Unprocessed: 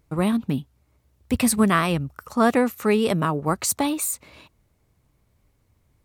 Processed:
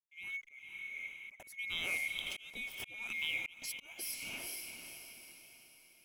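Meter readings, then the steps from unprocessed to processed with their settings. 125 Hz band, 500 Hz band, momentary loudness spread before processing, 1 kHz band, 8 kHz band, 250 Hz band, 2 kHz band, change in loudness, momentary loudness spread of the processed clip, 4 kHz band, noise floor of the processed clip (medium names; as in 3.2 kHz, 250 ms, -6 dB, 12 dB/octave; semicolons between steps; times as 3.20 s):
-35.5 dB, -33.5 dB, 10 LU, -32.0 dB, -17.5 dB, -38.0 dB, -7.0 dB, -17.5 dB, 16 LU, -6.5 dB, -64 dBFS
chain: split-band scrambler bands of 2 kHz; hysteresis with a dead band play -39.5 dBFS; LFO notch saw up 0.68 Hz 380–5000 Hz; compression 4:1, threshold -33 dBFS, peak gain reduction 16 dB; echo that smears into a reverb 482 ms, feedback 45%, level -7 dB; slow attack 497 ms; trim -1.5 dB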